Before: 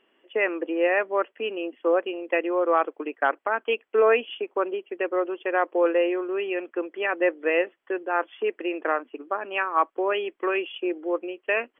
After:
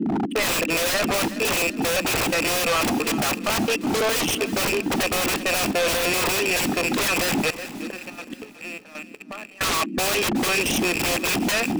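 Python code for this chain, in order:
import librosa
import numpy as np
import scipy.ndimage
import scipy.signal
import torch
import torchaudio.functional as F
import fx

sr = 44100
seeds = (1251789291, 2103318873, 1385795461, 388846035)

y = fx.rattle_buzz(x, sr, strikes_db=-49.0, level_db=-14.0)
y = fx.low_shelf(y, sr, hz=280.0, db=-8.0)
y = y + 0.31 * np.pad(y, (int(1.6 * sr / 1000.0), 0))[:len(y)]
y = fx.leveller(y, sr, passes=5)
y = fx.dmg_noise_band(y, sr, seeds[0], low_hz=190.0, high_hz=330.0, level_db=-24.0)
y = fx.gate_flip(y, sr, shuts_db=-12.0, range_db=-27, at=(7.5, 9.61))
y = fx.step_gate(y, sr, bpm=176, pattern='xxx..xx..xx.', floor_db=-12.0, edge_ms=4.5)
y = 10.0 ** (-10.0 / 20.0) * np.tanh(y / 10.0 ** (-10.0 / 20.0))
y = fx.small_body(y, sr, hz=(1800.0, 2700.0), ring_ms=45, db=6)
y = 10.0 ** (-22.5 / 20.0) * (np.abs((y / 10.0 ** (-22.5 / 20.0) + 3.0) % 4.0 - 2.0) - 1.0)
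y = fx.echo_feedback(y, sr, ms=370, feedback_pct=49, wet_db=-15)
y = y * librosa.db_to_amplitude(4.5)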